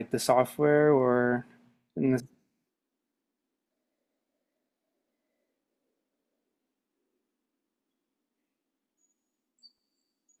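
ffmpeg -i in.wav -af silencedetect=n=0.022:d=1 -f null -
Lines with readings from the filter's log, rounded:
silence_start: 2.20
silence_end: 10.40 | silence_duration: 8.20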